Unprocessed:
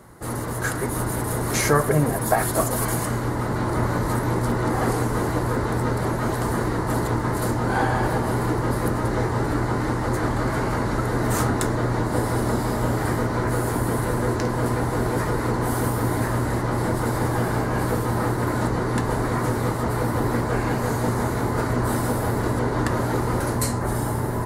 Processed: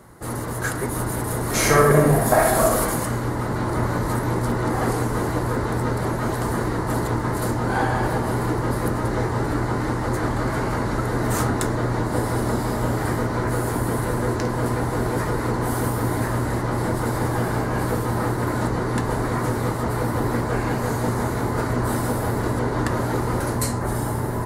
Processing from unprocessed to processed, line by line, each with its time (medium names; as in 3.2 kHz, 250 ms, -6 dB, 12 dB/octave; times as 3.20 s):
1.49–2.79 s: reverb throw, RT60 0.99 s, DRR -2 dB